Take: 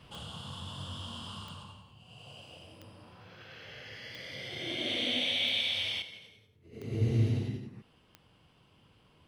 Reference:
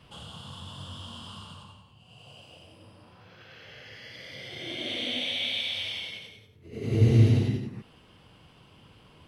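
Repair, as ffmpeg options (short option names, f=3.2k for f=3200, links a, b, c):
-af "adeclick=t=4,asetnsamples=n=441:p=0,asendcmd='6.02 volume volume 8.5dB',volume=0dB"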